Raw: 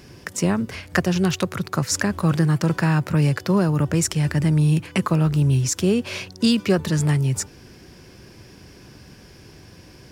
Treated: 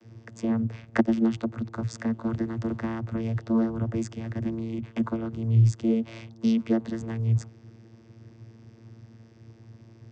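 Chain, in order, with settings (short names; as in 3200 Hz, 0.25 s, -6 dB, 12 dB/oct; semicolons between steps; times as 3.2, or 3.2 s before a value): vocoder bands 16, saw 113 Hz; 0.82–1.3 transient shaper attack +7 dB, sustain -5 dB; gain -5.5 dB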